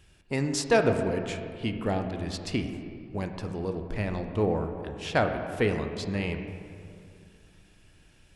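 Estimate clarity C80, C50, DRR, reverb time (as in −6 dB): 8.0 dB, 7.0 dB, 5.5 dB, 2.4 s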